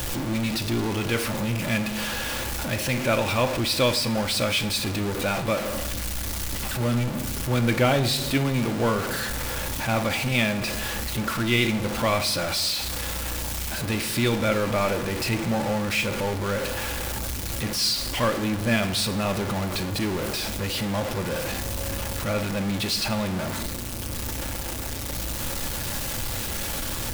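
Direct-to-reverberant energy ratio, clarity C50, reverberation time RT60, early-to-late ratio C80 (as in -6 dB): 7.0 dB, 13.5 dB, 1.2 s, 15.5 dB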